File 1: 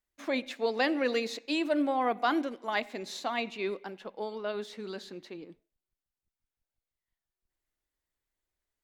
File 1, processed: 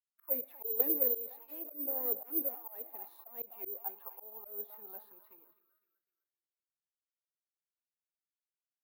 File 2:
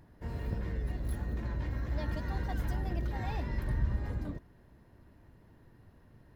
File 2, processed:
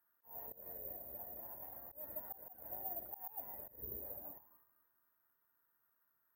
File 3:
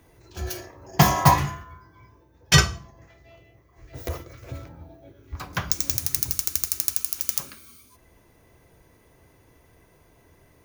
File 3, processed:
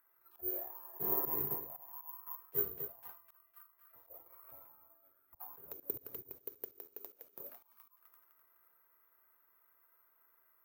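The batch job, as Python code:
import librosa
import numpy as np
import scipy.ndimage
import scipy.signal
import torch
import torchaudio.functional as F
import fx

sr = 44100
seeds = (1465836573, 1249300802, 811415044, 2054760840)

p1 = fx.self_delay(x, sr, depth_ms=0.2)
p2 = fx.rider(p1, sr, range_db=3, speed_s=2.0)
p3 = p2 + fx.echo_feedback(p2, sr, ms=254, feedback_pct=56, wet_db=-15.0, dry=0)
p4 = fx.auto_wah(p3, sr, base_hz=420.0, top_hz=1400.0, q=6.0, full_db=-25.5, direction='down')
p5 = fx.dynamic_eq(p4, sr, hz=630.0, q=2.4, threshold_db=-53.0, ratio=4.0, max_db=-6)
p6 = (np.kron(p5[::3], np.eye(3)[0]) * 3)[:len(p5)]
p7 = fx.auto_swell(p6, sr, attack_ms=163.0)
p8 = fx.high_shelf(p7, sr, hz=7100.0, db=5.0)
y = fx.band_widen(p8, sr, depth_pct=40)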